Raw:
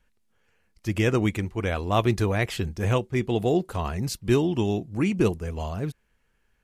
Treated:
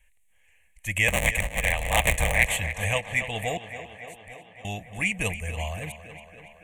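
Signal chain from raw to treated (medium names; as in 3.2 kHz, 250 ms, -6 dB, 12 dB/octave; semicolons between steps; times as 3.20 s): 1.08–2.57 s: cycle switcher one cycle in 3, inverted; ten-band graphic EQ 125 Hz -11 dB, 250 Hz -12 dB, 1 kHz -9 dB, 2 kHz +8 dB, 4 kHz -5 dB, 8 kHz +12 dB; 3.57–4.65 s: inverted gate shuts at -33 dBFS, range -25 dB; static phaser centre 1.4 kHz, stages 6; tape echo 281 ms, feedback 74%, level -11 dB, low-pass 4.9 kHz; trim +6 dB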